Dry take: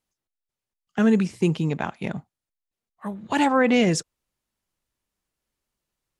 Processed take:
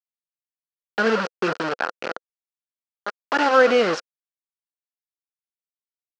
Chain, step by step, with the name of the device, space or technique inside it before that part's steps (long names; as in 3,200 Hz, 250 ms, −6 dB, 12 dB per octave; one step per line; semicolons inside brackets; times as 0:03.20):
hand-held game console (bit reduction 4 bits; loudspeaker in its box 410–4,600 Hz, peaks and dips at 500 Hz +6 dB, 940 Hz −3 dB, 1,400 Hz +9 dB, 2,200 Hz −5 dB, 3,600 Hz −7 dB)
level +2 dB